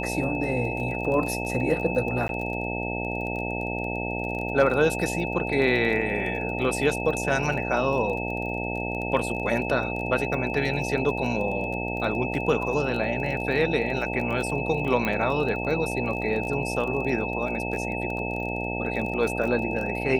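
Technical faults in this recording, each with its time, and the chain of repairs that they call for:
buzz 60 Hz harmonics 15 -31 dBFS
crackle 26 per s -32 dBFS
whine 2.6 kHz -32 dBFS
2.28–2.29 s: dropout 12 ms
15.05 s: pop -13 dBFS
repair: de-click; band-stop 2.6 kHz, Q 30; de-hum 60 Hz, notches 15; interpolate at 2.28 s, 12 ms

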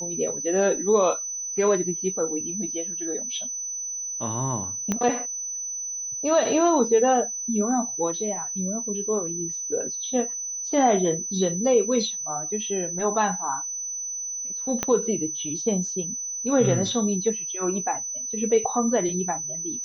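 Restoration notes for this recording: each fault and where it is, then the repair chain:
whine 6 kHz -29 dBFS
4.92 s: pop -11 dBFS
14.83 s: pop -9 dBFS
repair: de-click; band-stop 6 kHz, Q 30

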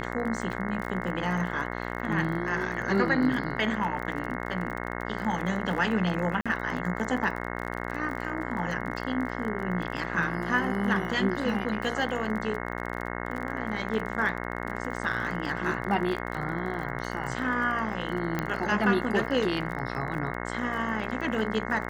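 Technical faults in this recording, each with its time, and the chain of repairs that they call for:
buzz 60 Hz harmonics 36 -34 dBFS
crackle 36 per s -34 dBFS
6.41–6.46 s: dropout 46 ms
18.39 s: pop -14 dBFS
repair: de-click; de-hum 60 Hz, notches 36; interpolate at 6.41 s, 46 ms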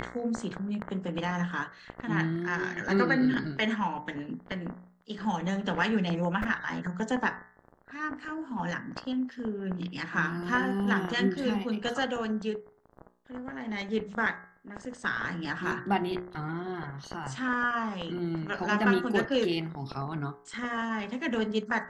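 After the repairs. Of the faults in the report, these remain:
nothing left

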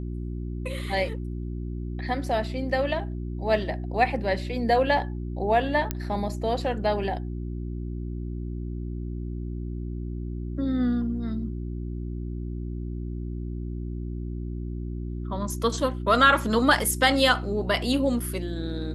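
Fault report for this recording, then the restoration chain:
hum 60 Hz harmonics 6 -32 dBFS
5.91 s: pop -11 dBFS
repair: de-click; de-hum 60 Hz, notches 6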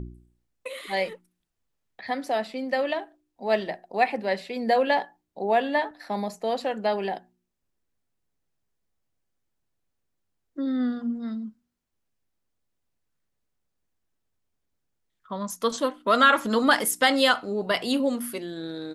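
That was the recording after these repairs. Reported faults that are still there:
nothing left

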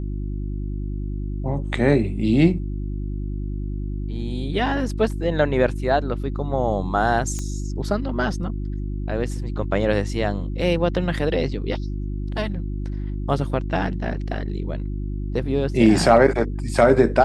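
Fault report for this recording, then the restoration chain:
hum 50 Hz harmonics 7 -27 dBFS
7.39 s: pop -16 dBFS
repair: de-click; de-hum 50 Hz, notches 7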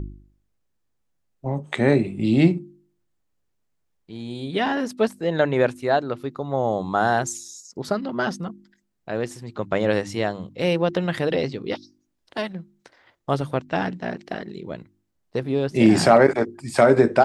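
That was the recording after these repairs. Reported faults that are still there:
nothing left

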